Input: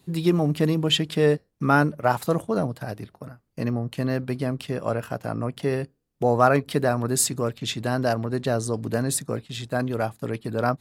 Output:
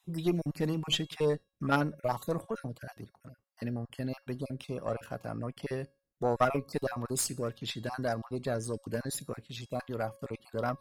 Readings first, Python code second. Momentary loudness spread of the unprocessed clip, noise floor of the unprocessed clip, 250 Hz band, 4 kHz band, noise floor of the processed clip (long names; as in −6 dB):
11 LU, −71 dBFS, −10.0 dB, −8.5 dB, −78 dBFS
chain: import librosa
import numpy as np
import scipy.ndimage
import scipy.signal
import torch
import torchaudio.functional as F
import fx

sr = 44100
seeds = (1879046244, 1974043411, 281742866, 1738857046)

y = fx.spec_dropout(x, sr, seeds[0], share_pct=28)
y = fx.comb_fb(y, sr, f0_hz=550.0, decay_s=0.42, harmonics='all', damping=0.0, mix_pct=60)
y = fx.cheby_harmonics(y, sr, harmonics=(3, 4), levels_db=(-21, -20), full_scale_db=-11.0)
y = y * 10.0 ** (2.0 / 20.0)